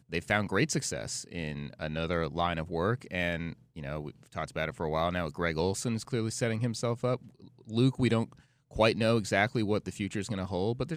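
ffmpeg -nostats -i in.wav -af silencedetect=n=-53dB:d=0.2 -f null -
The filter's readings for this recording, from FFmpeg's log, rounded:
silence_start: 8.42
silence_end: 8.71 | silence_duration: 0.29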